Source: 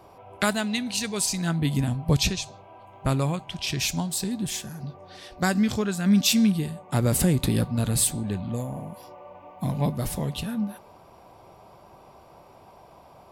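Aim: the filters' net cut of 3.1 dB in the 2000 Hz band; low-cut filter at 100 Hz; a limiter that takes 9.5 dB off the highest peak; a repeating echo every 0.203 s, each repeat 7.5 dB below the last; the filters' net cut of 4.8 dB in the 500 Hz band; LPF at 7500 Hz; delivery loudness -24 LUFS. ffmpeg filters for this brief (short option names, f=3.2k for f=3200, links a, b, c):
-af "highpass=100,lowpass=7.5k,equalizer=f=500:t=o:g=-6,equalizer=f=2k:t=o:g=-4,alimiter=limit=-20.5dB:level=0:latency=1,aecho=1:1:203|406|609|812|1015:0.422|0.177|0.0744|0.0312|0.0131,volume=5.5dB"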